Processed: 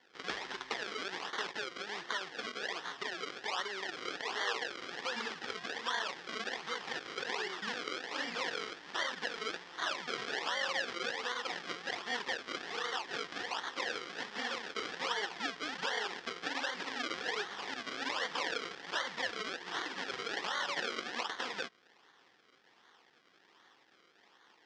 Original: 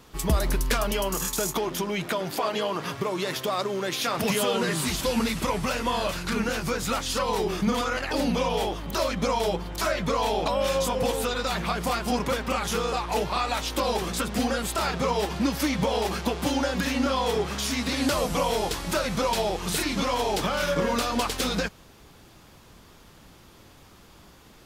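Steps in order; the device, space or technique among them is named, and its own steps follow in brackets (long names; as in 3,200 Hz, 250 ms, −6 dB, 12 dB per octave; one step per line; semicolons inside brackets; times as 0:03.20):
0:04.07–0:04.91: high-pass filter 360 Hz 24 dB per octave
circuit-bent sampling toy (sample-and-hold swept by an LFO 34×, swing 100% 1.3 Hz; loudspeaker in its box 560–5,900 Hz, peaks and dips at 610 Hz −10 dB, 1,800 Hz +8 dB, 3,300 Hz +6 dB, 5,100 Hz +5 dB)
level −8 dB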